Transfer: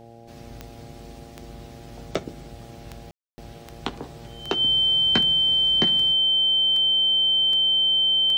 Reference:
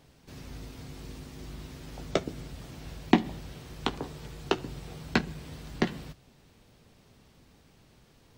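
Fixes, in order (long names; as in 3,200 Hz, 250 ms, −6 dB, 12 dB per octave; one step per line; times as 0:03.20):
click removal
hum removal 115.9 Hz, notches 7
notch filter 3,100 Hz, Q 30
ambience match 0:03.11–0:03.38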